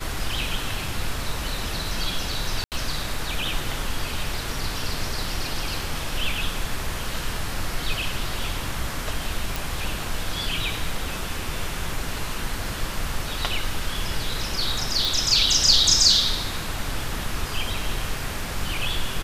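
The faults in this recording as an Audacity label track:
2.640000	2.720000	gap 78 ms
9.560000	9.560000	pop
15.050000	15.050000	pop

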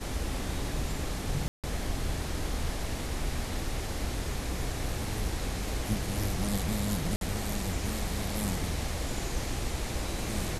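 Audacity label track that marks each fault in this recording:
1.480000	1.640000	gap 0.157 s
7.160000	7.210000	gap 52 ms

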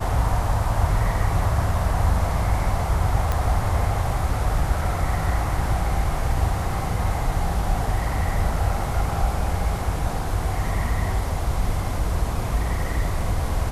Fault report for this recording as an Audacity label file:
3.320000	3.320000	pop

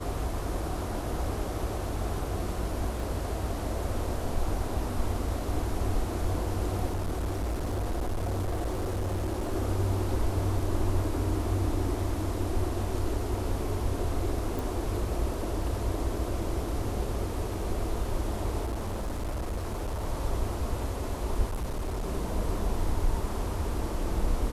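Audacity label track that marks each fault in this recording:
3.000000	3.000000	gap 2 ms
6.890000	9.540000	clipped -26.5 dBFS
14.590000	14.590000	pop
18.650000	20.050000	clipped -28.5 dBFS
21.490000	22.030000	clipped -28 dBFS

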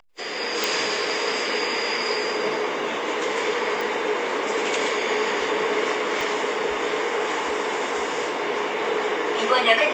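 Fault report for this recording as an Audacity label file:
0.640000	0.640000	pop
3.810000	3.810000	pop
6.210000	6.210000	pop

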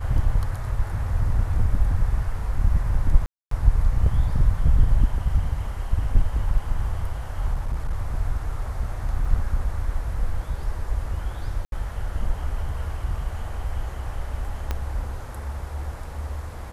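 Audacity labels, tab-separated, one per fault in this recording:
3.260000	3.510000	gap 0.253 s
7.530000	7.940000	clipped -20.5 dBFS
9.250000	9.250000	gap 2.1 ms
11.650000	11.720000	gap 72 ms
14.710000	14.710000	pop -13 dBFS

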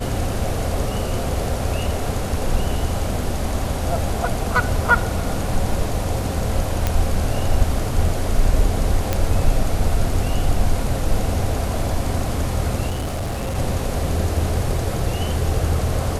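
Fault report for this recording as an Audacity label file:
6.870000	6.870000	pop -5 dBFS
9.130000	9.130000	pop -5 dBFS
12.890000	13.560000	clipped -21 dBFS

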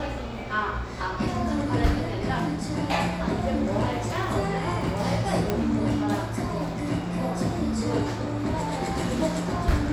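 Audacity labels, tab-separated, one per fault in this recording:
5.500000	5.500000	pop -11 dBFS

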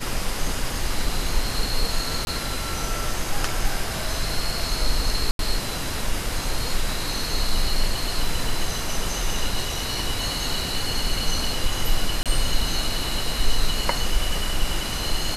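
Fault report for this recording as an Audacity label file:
2.250000	2.270000	gap 21 ms
5.310000	5.390000	gap 82 ms
12.230000	12.260000	gap 27 ms

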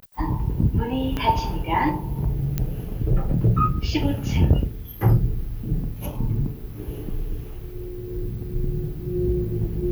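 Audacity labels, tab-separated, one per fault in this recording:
1.170000	1.170000	pop -13 dBFS
2.580000	2.580000	pop -10 dBFS

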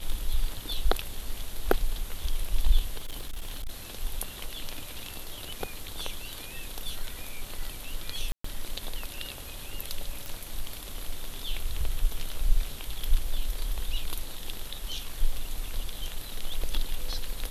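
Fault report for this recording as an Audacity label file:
2.970000	3.700000	clipped -30 dBFS
8.320000	8.440000	gap 0.124 s
10.260000	10.260000	pop

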